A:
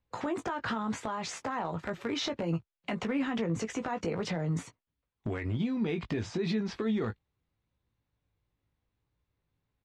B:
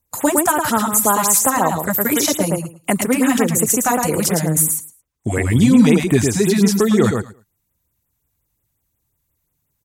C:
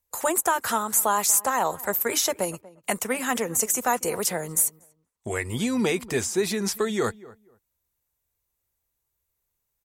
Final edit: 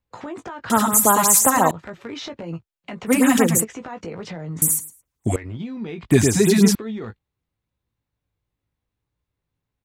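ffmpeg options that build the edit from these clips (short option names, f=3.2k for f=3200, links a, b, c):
-filter_complex "[1:a]asplit=4[a][b][c][d];[0:a]asplit=5[e][f][g][h][i];[e]atrim=end=0.702[j];[a]atrim=start=0.698:end=1.712[k];[f]atrim=start=1.708:end=3.12[l];[b]atrim=start=3.06:end=3.65[m];[g]atrim=start=3.59:end=4.622[n];[c]atrim=start=4.618:end=5.362[o];[h]atrim=start=5.358:end=6.112[p];[d]atrim=start=6.108:end=6.752[q];[i]atrim=start=6.748[r];[j][k]acrossfade=d=0.004:c1=hsin:c2=hsin[s];[s][l]acrossfade=d=0.004:c1=hsin:c2=hsin[t];[t][m]acrossfade=d=0.06:c1=tri:c2=tri[u];[u][n]acrossfade=d=0.06:c1=tri:c2=tri[v];[v][o]acrossfade=d=0.004:c1=hsin:c2=hsin[w];[w][p]acrossfade=d=0.004:c1=hsin:c2=hsin[x];[x][q]acrossfade=d=0.004:c1=hsin:c2=hsin[y];[y][r]acrossfade=d=0.004:c1=hsin:c2=hsin"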